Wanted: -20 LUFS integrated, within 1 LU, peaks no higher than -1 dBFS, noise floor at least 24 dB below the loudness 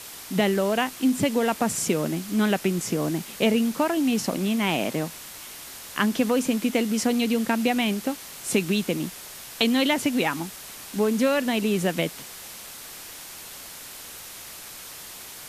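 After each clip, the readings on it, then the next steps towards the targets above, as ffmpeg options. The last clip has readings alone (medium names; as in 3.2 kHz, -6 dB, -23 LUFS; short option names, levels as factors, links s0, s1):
noise floor -41 dBFS; noise floor target -49 dBFS; loudness -24.5 LUFS; peak level -7.5 dBFS; loudness target -20.0 LUFS
-> -af "afftdn=nr=8:nf=-41"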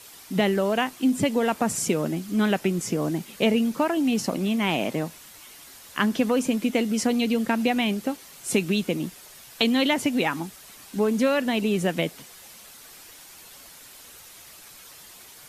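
noise floor -47 dBFS; noise floor target -49 dBFS
-> -af "afftdn=nr=6:nf=-47"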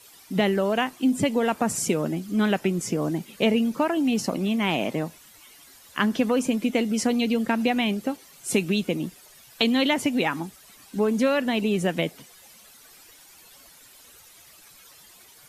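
noise floor -52 dBFS; loudness -24.5 LUFS; peak level -7.0 dBFS; loudness target -20.0 LUFS
-> -af "volume=1.68"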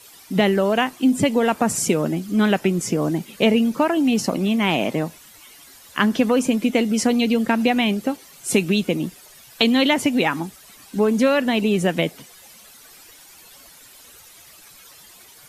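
loudness -20.0 LUFS; peak level -2.5 dBFS; noise floor -47 dBFS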